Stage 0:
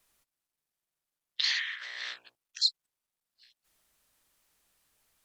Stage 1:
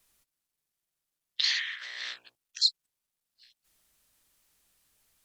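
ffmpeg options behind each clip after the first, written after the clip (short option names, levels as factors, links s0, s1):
-af "equalizer=f=870:w=0.39:g=-4.5,volume=1.41"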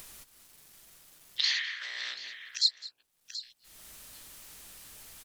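-af "aecho=1:1:205|733:0.112|0.106,acompressor=mode=upward:threshold=0.0282:ratio=2.5,volume=0.891"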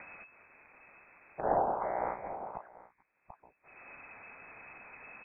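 -af "lowpass=f=2200:t=q:w=0.5098,lowpass=f=2200:t=q:w=0.6013,lowpass=f=2200:t=q:w=0.9,lowpass=f=2200:t=q:w=2.563,afreqshift=-2600,volume=2.51"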